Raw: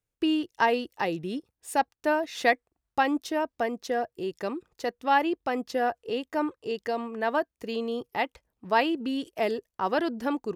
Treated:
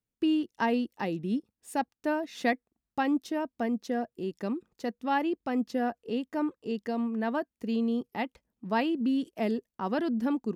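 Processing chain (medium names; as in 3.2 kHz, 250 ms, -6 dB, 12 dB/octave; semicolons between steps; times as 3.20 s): peaking EQ 220 Hz +14 dB 0.85 oct; trim -6.5 dB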